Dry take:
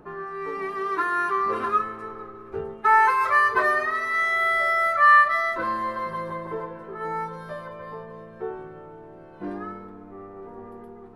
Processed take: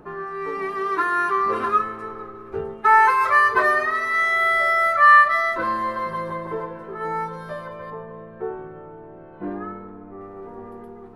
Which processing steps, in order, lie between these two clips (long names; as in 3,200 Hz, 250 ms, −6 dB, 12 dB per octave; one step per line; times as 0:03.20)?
0:07.90–0:10.21: Gaussian smoothing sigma 2.8 samples
level +3 dB